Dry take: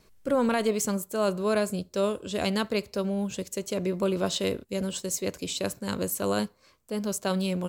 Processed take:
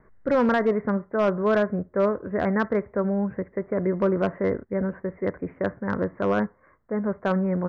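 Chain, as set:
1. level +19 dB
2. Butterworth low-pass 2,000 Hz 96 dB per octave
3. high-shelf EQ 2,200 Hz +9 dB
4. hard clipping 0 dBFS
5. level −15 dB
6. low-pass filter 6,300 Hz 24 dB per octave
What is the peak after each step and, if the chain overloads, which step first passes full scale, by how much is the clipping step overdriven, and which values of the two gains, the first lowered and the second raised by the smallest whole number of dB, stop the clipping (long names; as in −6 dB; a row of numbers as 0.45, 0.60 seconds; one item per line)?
+4.0, +5.0, +6.5, 0.0, −15.0, −14.5 dBFS
step 1, 6.5 dB
step 1 +12 dB, step 5 −8 dB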